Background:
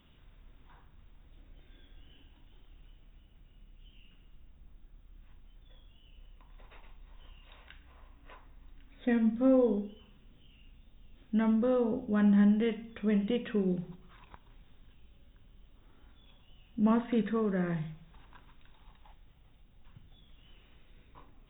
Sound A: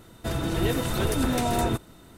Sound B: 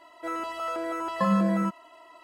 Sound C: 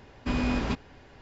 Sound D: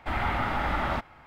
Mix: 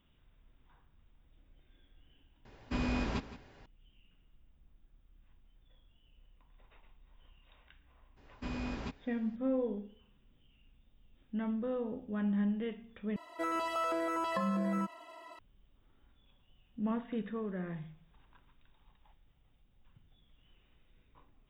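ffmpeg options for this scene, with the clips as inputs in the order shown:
-filter_complex "[3:a]asplit=2[a][b];[0:a]volume=-8dB[c];[a]aecho=1:1:167:0.188[d];[2:a]acompressor=threshold=-29dB:ratio=6:attack=3.2:release=140:knee=1:detection=peak[e];[c]asplit=2[f][g];[f]atrim=end=13.164[h];[e]atrim=end=2.23,asetpts=PTS-STARTPTS,volume=-0.5dB[i];[g]atrim=start=15.386[j];[d]atrim=end=1.21,asetpts=PTS-STARTPTS,volume=-6dB,afade=t=in:d=0.004:c=hsin,afade=t=out:st=1.206:d=0.004:c=hsin,adelay=2450[k];[b]atrim=end=1.21,asetpts=PTS-STARTPTS,volume=-11.5dB,afade=t=in:d=0.02,afade=t=out:st=1.19:d=0.02,adelay=8160[l];[h][i]acrossfade=d=0.004:c1=hsin:c2=hsin[m];[m][j]acrossfade=d=0.004:c1=hsin:c2=hsin[n];[n][k][l]amix=inputs=3:normalize=0"

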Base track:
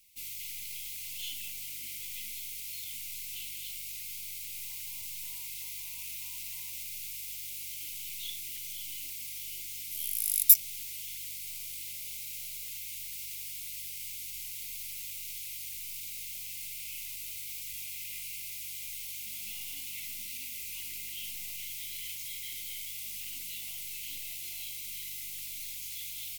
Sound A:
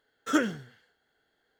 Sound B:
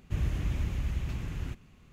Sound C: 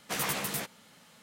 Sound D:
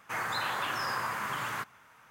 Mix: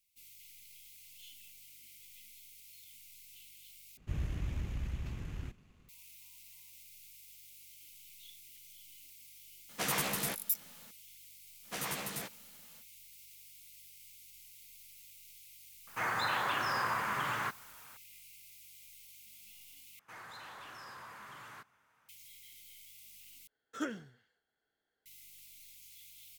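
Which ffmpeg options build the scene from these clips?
-filter_complex "[3:a]asplit=2[a][b];[4:a]asplit=2[c][d];[0:a]volume=-15dB[e];[2:a]aeval=exprs='if(lt(val(0),0),0.708*val(0),val(0))':c=same[f];[c]highshelf=f=6.4k:g=-7[g];[d]asoftclip=type=tanh:threshold=-31.5dB[h];[e]asplit=4[i][j][k][l];[i]atrim=end=3.974[m];[f]atrim=end=1.92,asetpts=PTS-STARTPTS,volume=-5dB[n];[j]atrim=start=5.886:end=19.994[o];[h]atrim=end=2.1,asetpts=PTS-STARTPTS,volume=-13.5dB[p];[k]atrim=start=22.086:end=23.474[q];[1:a]atrim=end=1.59,asetpts=PTS-STARTPTS,volume=-12.5dB[r];[l]atrim=start=25.056[s];[a]atrim=end=1.22,asetpts=PTS-STARTPTS,volume=-1.5dB,afade=t=in:d=0.004:c=hsin,afade=t=out:st=1.216:d=0.004:c=hsin,adelay=9690[t];[b]atrim=end=1.22,asetpts=PTS-STARTPTS,volume=-6.5dB,afade=t=in:d=0.05,afade=t=out:st=1.17:d=0.05,adelay=512442S[u];[g]atrim=end=2.1,asetpts=PTS-STARTPTS,afade=t=in:d=0.004:c=hsin,afade=t=out:st=2.096:d=0.004:c=hsin,adelay=15870[v];[m][n]acrossfade=d=0.004:c1=hsin:c2=hsin[w];[w][o]acrossfade=d=0.004:c1=hsin:c2=hsin[x];[x][p]acrossfade=d=0.004:c1=hsin:c2=hsin[y];[y][q]acrossfade=d=0.004:c1=hsin:c2=hsin[z];[z][r]acrossfade=d=0.004:c1=hsin:c2=hsin[aa];[aa][s]acrossfade=d=0.004:c1=hsin:c2=hsin[ab];[ab][t][u][v]amix=inputs=4:normalize=0"

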